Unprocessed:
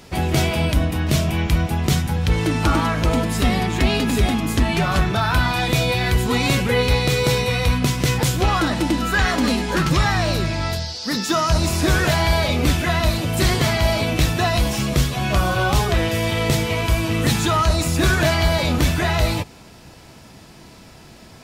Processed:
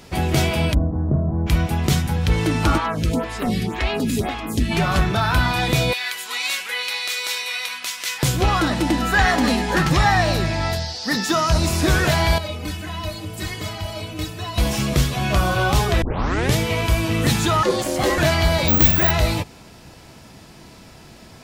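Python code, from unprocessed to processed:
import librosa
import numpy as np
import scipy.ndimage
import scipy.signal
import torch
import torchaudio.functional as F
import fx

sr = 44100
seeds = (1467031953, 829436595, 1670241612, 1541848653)

y = fx.gaussian_blur(x, sr, sigma=9.7, at=(0.73, 1.46), fade=0.02)
y = fx.stagger_phaser(y, sr, hz=1.9, at=(2.77, 4.7), fade=0.02)
y = fx.highpass(y, sr, hz=1500.0, slope=12, at=(5.93, 8.23))
y = fx.small_body(y, sr, hz=(780.0, 1800.0), ring_ms=20, db=8, at=(8.87, 11.31))
y = fx.stiff_resonator(y, sr, f0_hz=92.0, decay_s=0.26, stiffness=0.03, at=(12.38, 14.58))
y = fx.ring_mod(y, sr, carrier_hz=440.0, at=(17.63, 18.18))
y = fx.resample_bad(y, sr, factor=2, down='none', up='zero_stuff', at=(18.68, 19.11))
y = fx.edit(y, sr, fx.tape_start(start_s=16.02, length_s=0.55), tone=tone)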